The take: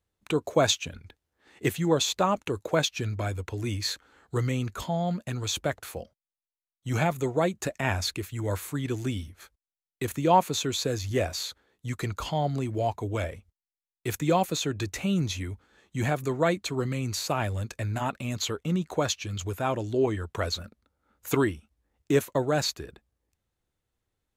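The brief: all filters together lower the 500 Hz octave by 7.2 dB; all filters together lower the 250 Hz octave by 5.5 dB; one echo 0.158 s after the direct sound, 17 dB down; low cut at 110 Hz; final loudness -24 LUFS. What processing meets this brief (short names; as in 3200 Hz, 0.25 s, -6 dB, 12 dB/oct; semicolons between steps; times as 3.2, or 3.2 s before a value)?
HPF 110 Hz; bell 250 Hz -5 dB; bell 500 Hz -8 dB; echo 0.158 s -17 dB; gain +8 dB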